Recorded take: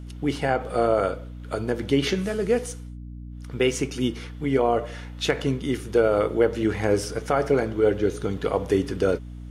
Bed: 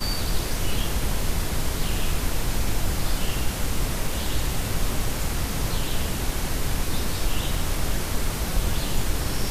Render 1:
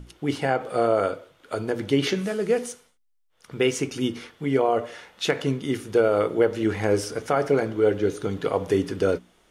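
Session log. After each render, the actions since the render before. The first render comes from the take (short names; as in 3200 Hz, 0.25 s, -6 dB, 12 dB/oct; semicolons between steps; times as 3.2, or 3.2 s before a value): notches 60/120/180/240/300 Hz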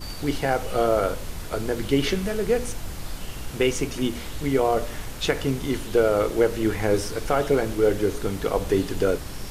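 add bed -9 dB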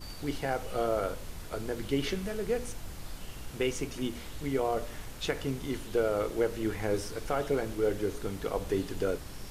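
gain -8.5 dB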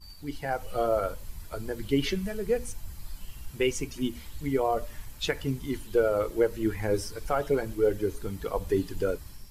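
per-bin expansion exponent 1.5; AGC gain up to 6 dB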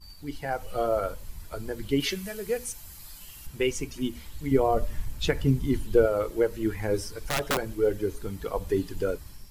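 2–3.47 tilt +2 dB/oct; 4.51–6.06 low shelf 340 Hz +10 dB; 7.12–7.58 wrapped overs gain 20 dB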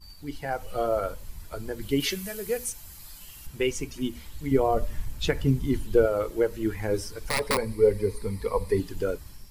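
1.81–2.7 high shelf 8200 Hz +7 dB; 7.3–8.8 ripple EQ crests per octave 0.92, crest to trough 12 dB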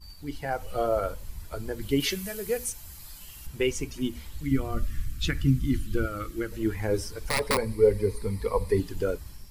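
4.43–6.52 spectral gain 350–1100 Hz -15 dB; bell 63 Hz +4 dB 1.3 oct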